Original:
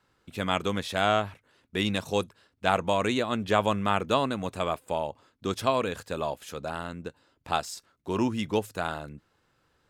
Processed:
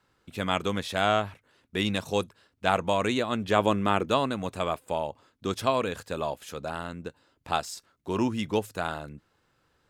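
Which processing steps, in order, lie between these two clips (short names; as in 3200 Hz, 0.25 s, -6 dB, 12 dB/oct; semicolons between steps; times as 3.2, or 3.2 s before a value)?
3.56–4.06 bell 330 Hz +7 dB 0.89 oct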